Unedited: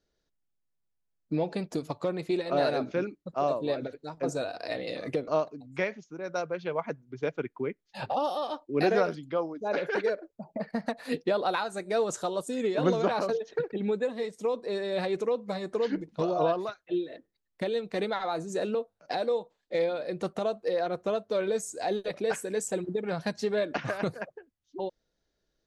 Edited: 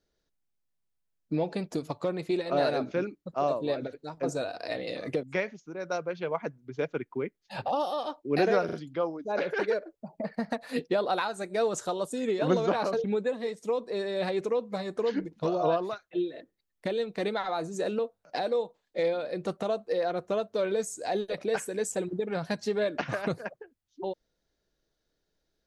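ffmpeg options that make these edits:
ffmpeg -i in.wav -filter_complex "[0:a]asplit=5[link_01][link_02][link_03][link_04][link_05];[link_01]atrim=end=5.232[link_06];[link_02]atrim=start=5.668:end=9.132[link_07];[link_03]atrim=start=9.088:end=9.132[link_08];[link_04]atrim=start=9.088:end=13.402[link_09];[link_05]atrim=start=13.798[link_10];[link_06][link_07]acrossfade=duration=0.004:curve1=hsin:curve2=hsin[link_11];[link_11][link_08]acrossfade=duration=0.004:curve1=hsin:curve2=hsin[link_12];[link_12][link_09]acrossfade=duration=0.004:curve1=hsin:curve2=hsin[link_13];[link_13][link_10]acrossfade=duration=0.004:curve1=hsin:curve2=hsin" out.wav

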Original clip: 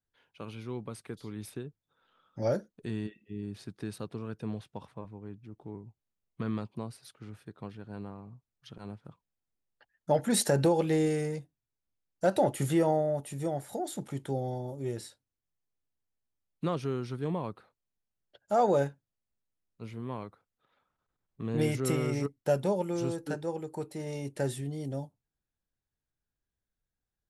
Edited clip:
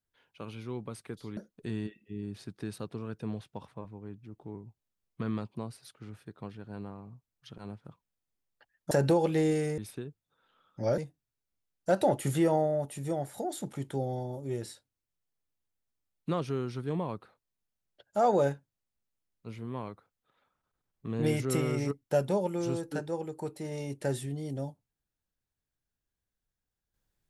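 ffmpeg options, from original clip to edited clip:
ffmpeg -i in.wav -filter_complex "[0:a]asplit=5[link_01][link_02][link_03][link_04][link_05];[link_01]atrim=end=1.372[link_06];[link_02]atrim=start=2.568:end=10.112[link_07];[link_03]atrim=start=10.458:end=11.332[link_08];[link_04]atrim=start=1.368:end=2.572[link_09];[link_05]atrim=start=11.328[link_10];[link_06][link_07]acrossfade=duration=0.004:curve1=hsin:curve2=hsin[link_11];[link_11][link_08]acrossfade=duration=0.004:curve1=hsin:curve2=hsin[link_12];[link_12][link_09]acrossfade=duration=0.004:curve1=hsin:curve2=hsin[link_13];[link_13][link_10]acrossfade=duration=0.004:curve1=hsin:curve2=hsin" out.wav

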